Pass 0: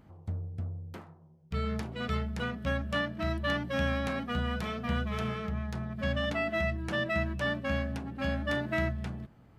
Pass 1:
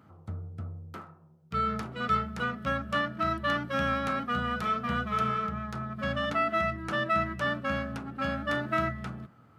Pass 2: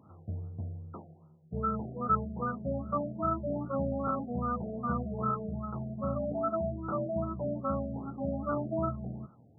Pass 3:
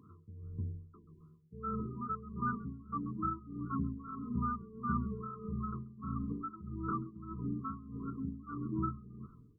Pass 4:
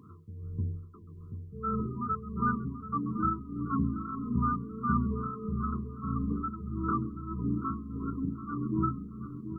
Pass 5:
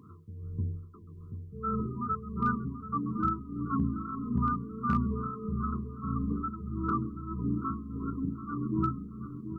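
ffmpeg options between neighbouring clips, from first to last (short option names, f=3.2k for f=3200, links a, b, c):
-af "highpass=f=87:w=0.5412,highpass=f=87:w=1.3066,equalizer=f=1.3k:t=o:w=0.3:g=13.5,bandreject=f=178.7:t=h:w=4,bandreject=f=357.4:t=h:w=4,bandreject=f=536.1:t=h:w=4,bandreject=f=714.8:t=h:w=4,bandreject=f=893.5:t=h:w=4,bandreject=f=1.0722k:t=h:w=4,bandreject=f=1.2509k:t=h:w=4,bandreject=f=1.4296k:t=h:w=4,bandreject=f=1.6083k:t=h:w=4,bandreject=f=1.787k:t=h:w=4,bandreject=f=1.9657k:t=h:w=4,bandreject=f=2.1444k:t=h:w=4,bandreject=f=2.3231k:t=h:w=4,bandreject=f=2.5018k:t=h:w=4,bandreject=f=2.6805k:t=h:w=4"
-af "afftfilt=real='re*lt(b*sr/1024,750*pow(1500/750,0.5+0.5*sin(2*PI*2.5*pts/sr)))':imag='im*lt(b*sr/1024,750*pow(1500/750,0.5+0.5*sin(2*PI*2.5*pts/sr)))':win_size=1024:overlap=0.75"
-filter_complex "[0:a]asplit=4[a][b][c][d];[b]adelay=134,afreqshift=-48,volume=-20dB[e];[c]adelay=268,afreqshift=-96,volume=-28.6dB[f];[d]adelay=402,afreqshift=-144,volume=-37.3dB[g];[a][e][f][g]amix=inputs=4:normalize=0,tremolo=f=1.6:d=0.81,afftfilt=real='re*(1-between(b*sr/4096,470,970))':imag='im*(1-between(b*sr/4096,470,970))':win_size=4096:overlap=0.75"
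-filter_complex "[0:a]asplit=2[a][b];[b]adelay=733,lowpass=f=800:p=1,volume=-9dB,asplit=2[c][d];[d]adelay=733,lowpass=f=800:p=1,volume=0.46,asplit=2[e][f];[f]adelay=733,lowpass=f=800:p=1,volume=0.46,asplit=2[g][h];[h]adelay=733,lowpass=f=800:p=1,volume=0.46,asplit=2[i][j];[j]adelay=733,lowpass=f=800:p=1,volume=0.46[k];[a][c][e][g][i][k]amix=inputs=6:normalize=0,volume=6dB"
-af "volume=18.5dB,asoftclip=hard,volume=-18.5dB"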